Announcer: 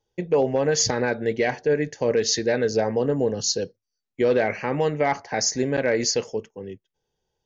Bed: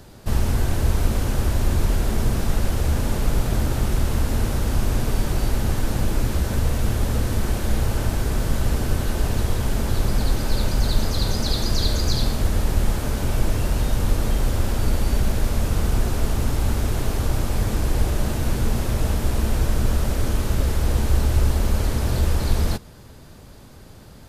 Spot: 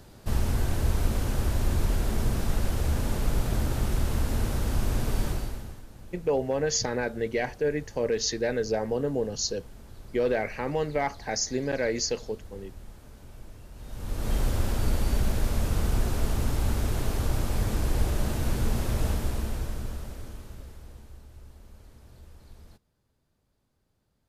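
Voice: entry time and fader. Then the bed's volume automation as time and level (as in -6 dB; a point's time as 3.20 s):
5.95 s, -5.5 dB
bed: 5.28 s -5.5 dB
5.87 s -25 dB
13.72 s -25 dB
14.34 s -5 dB
19.08 s -5 dB
21.25 s -30 dB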